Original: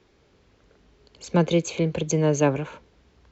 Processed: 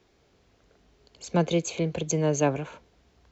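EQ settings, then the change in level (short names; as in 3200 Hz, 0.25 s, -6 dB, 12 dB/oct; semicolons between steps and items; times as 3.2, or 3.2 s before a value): bell 700 Hz +6.5 dB 0.21 oct; high shelf 6200 Hz +7.5 dB; -4.0 dB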